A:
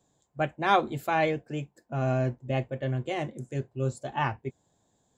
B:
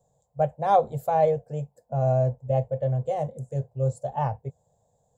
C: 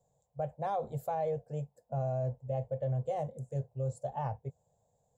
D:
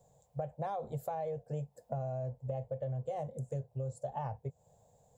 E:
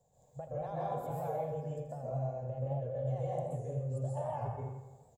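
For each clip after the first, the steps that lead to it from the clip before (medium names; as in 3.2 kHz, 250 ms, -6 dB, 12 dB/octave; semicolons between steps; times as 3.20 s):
FFT filter 150 Hz 0 dB, 340 Hz -22 dB, 480 Hz +4 dB, 790 Hz 0 dB, 1.3 kHz -15 dB, 2.5 kHz -21 dB, 8.5 kHz -5 dB; trim +4.5 dB
peak limiter -19.5 dBFS, peak gain reduction 10 dB; trim -6 dB
compression 6:1, threshold -44 dBFS, peak gain reduction 13.5 dB; trim +8.5 dB
on a send: feedback delay 83 ms, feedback 56%, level -11.5 dB; on the sum: plate-style reverb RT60 1 s, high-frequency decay 0.65×, pre-delay 115 ms, DRR -6.5 dB; warped record 78 rpm, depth 100 cents; trim -7 dB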